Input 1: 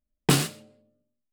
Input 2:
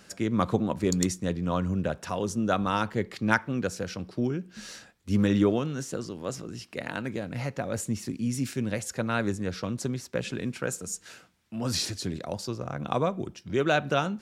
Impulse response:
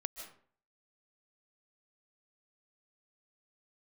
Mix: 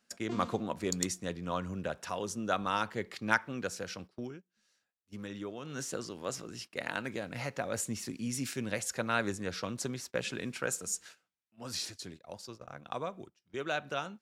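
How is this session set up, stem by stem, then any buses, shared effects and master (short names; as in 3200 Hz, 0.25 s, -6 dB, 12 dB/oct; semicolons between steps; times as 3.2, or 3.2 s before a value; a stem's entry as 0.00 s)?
-8.5 dB, 0.00 s, no send, arpeggiated vocoder bare fifth, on A#3, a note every 0.161 s; fast leveller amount 50%; auto duck -11 dB, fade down 0.30 s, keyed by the second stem
4.1 s -2.5 dB -> 4.45 s -12.5 dB -> 5.56 s -12.5 dB -> 5.76 s 0 dB -> 11.01 s 0 dB -> 11.47 s -7.5 dB, 0.00 s, no send, low shelf 400 Hz -10 dB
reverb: off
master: gate -46 dBFS, range -18 dB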